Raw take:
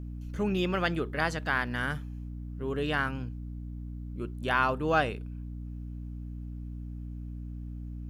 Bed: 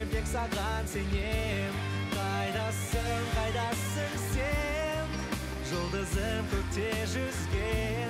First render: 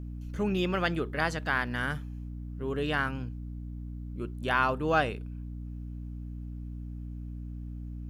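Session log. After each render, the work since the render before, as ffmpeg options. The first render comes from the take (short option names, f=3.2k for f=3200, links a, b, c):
-af anull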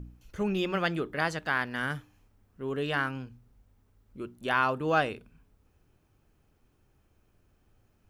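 -af "bandreject=f=60:t=h:w=4,bandreject=f=120:t=h:w=4,bandreject=f=180:t=h:w=4,bandreject=f=240:t=h:w=4,bandreject=f=300:t=h:w=4"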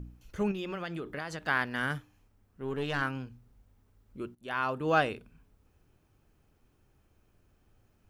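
-filter_complex "[0:a]asettb=1/sr,asplit=3[a][b][c];[a]atrim=end=0.514[d];[b]atrim=start=0.51:end=1.48,asetpts=PTS-STARTPTS,afade=t=in:d=0.004:c=qsin,afade=t=out:st=0.966:d=0.004:c=qsin,acompressor=threshold=-33dB:ratio=6:attack=3.2:release=140:knee=1:detection=peak[e];[c]atrim=start=1.476[f];[d][e]acrossfade=d=0.004:c1=hsin:c2=qsin[g];[g][f]acrossfade=d=0.004:c1=qsin:c2=hsin,asettb=1/sr,asplit=3[h][i][j];[h]atrim=end=1.984[k];[i]atrim=start=1.98:end=3.02,asetpts=PTS-STARTPTS,afade=t=in:d=0.004:c=qsin,afade=t=out:st=1.036:d=0.004:c=qsin,aeval=exprs='(tanh(14.1*val(0)+0.5)-tanh(0.5))/14.1':c=same[l];[j]atrim=start=3.016[m];[k][l]acrossfade=d=0.004:c1=hsin:c2=qsin[n];[n][m]acrossfade=d=0.004:c1=qsin:c2=hsin,asplit=2[o][p];[o]atrim=end=4.35,asetpts=PTS-STARTPTS,afade=t=out:st=4.346:d=0.004:c=hsin:silence=0.158489[q];[p]atrim=start=4.35,asetpts=PTS-STARTPTS,afade=t=in:d=0.59:silence=0.158489[r];[q][r]concat=n=2:v=0:a=1"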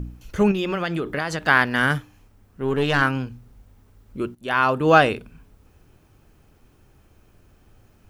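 -af "volume=12dB,alimiter=limit=-2dB:level=0:latency=1"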